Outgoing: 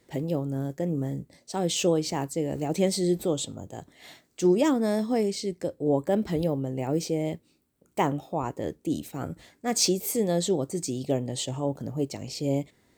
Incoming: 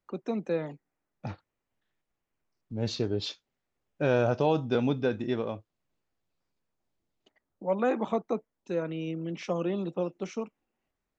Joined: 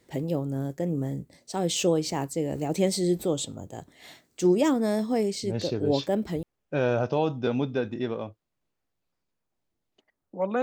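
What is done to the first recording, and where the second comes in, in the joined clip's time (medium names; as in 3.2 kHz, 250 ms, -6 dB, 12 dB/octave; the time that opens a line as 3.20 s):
outgoing
5.53 s: go over to incoming from 2.81 s, crossfade 1.80 s logarithmic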